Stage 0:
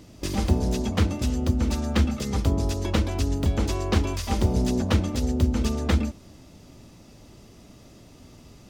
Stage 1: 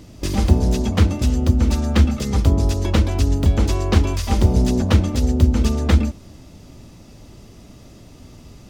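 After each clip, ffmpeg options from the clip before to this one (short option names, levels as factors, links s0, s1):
-af "lowshelf=f=120:g=5.5,volume=1.58"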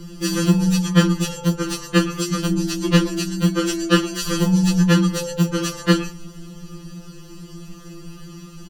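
-af "aecho=1:1:6.5:0.9,afftfilt=real='re*2.83*eq(mod(b,8),0)':imag='im*2.83*eq(mod(b,8),0)':win_size=2048:overlap=0.75,volume=1.78"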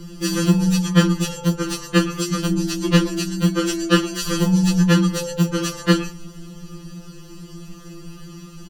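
-af anull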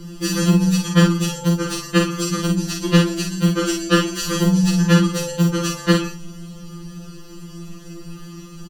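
-filter_complex "[0:a]asplit=2[s0][s1];[s1]adelay=47,volume=0.596[s2];[s0][s2]amix=inputs=2:normalize=0"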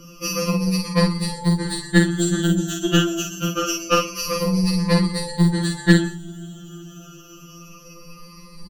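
-af "afftfilt=real='re*pow(10,22/40*sin(2*PI*(0.9*log(max(b,1)*sr/1024/100)/log(2)-(-0.26)*(pts-256)/sr)))':imag='im*pow(10,22/40*sin(2*PI*(0.9*log(max(b,1)*sr/1024/100)/log(2)-(-0.26)*(pts-256)/sr)))':win_size=1024:overlap=0.75,aeval=exprs='1.68*(cos(1*acos(clip(val(0)/1.68,-1,1)))-cos(1*PI/2))+0.15*(cos(4*acos(clip(val(0)/1.68,-1,1)))-cos(4*PI/2))':c=same,volume=0.501"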